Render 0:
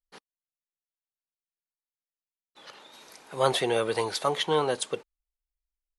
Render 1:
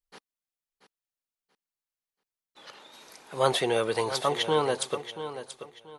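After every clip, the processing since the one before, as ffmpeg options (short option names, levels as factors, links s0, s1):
-af "aecho=1:1:683|1366|2049:0.266|0.0718|0.0194"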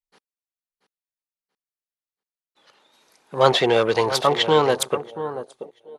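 -af "afwtdn=0.00891,volume=2.51"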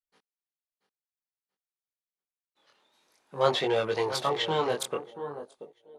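-af "flanger=delay=19:depth=6:speed=0.53,volume=0.501"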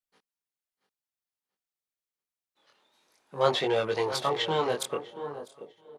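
-af "aecho=1:1:649|1298:0.0708|0.0177"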